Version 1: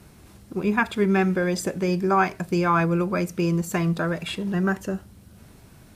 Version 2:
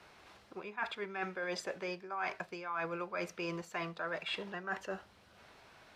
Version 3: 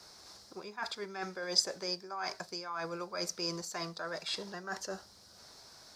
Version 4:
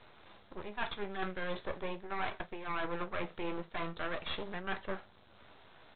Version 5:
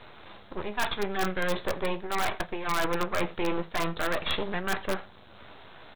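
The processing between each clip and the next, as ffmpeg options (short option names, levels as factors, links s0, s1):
-filter_complex "[0:a]acrossover=split=500 5000:gain=0.0891 1 0.0891[s0][s1][s2];[s0][s1][s2]amix=inputs=3:normalize=0,areverse,acompressor=threshold=0.0178:ratio=12,areverse"
-af "highshelf=f=3700:t=q:w=3:g=10.5"
-af "aresample=8000,aeval=exprs='max(val(0),0)':c=same,aresample=44100,flanger=delay=8.2:depth=7.8:regen=-58:speed=0.39:shape=sinusoidal,volume=3.16"
-filter_complex "[0:a]aecho=1:1:85:0.0668,asplit=2[s0][s1];[s1]aeval=exprs='(mod(18.8*val(0)+1,2)-1)/18.8':c=same,volume=0.596[s2];[s0][s2]amix=inputs=2:normalize=0,volume=1.88"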